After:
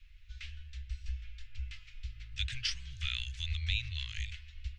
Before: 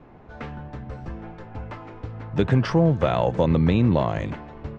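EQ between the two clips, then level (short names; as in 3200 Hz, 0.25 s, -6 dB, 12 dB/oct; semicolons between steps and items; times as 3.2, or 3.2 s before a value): inverse Chebyshev band-stop 200–790 Hz, stop band 70 dB; +4.0 dB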